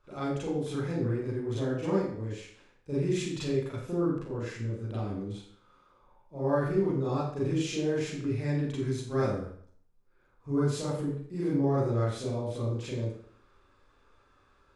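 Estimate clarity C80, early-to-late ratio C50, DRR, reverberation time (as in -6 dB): 4.5 dB, 1.0 dB, -9.5 dB, 0.55 s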